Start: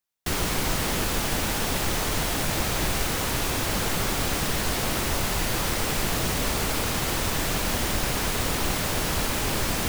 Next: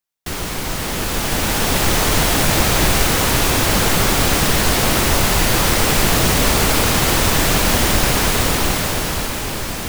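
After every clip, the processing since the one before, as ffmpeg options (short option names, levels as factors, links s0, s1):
-af "dynaudnorm=f=310:g=9:m=3.76,volume=1.12"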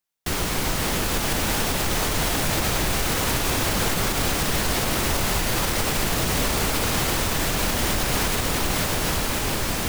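-af "alimiter=limit=0.224:level=0:latency=1:release=173"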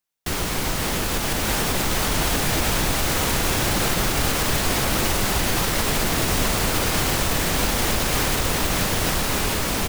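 -af "aecho=1:1:1185:0.631"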